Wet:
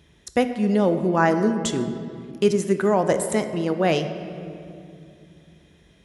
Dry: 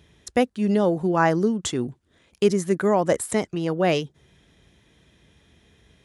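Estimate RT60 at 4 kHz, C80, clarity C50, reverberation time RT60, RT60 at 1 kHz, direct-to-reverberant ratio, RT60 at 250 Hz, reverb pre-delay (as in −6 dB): 1.5 s, 10.5 dB, 9.5 dB, 2.5 s, 2.2 s, 8.0 dB, 3.3 s, 3 ms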